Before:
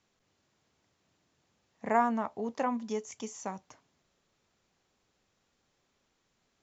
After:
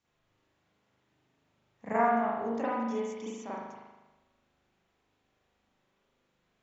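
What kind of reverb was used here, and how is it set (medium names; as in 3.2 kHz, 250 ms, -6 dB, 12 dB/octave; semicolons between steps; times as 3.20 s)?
spring tank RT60 1.1 s, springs 39 ms, chirp 45 ms, DRR -9 dB; trim -8 dB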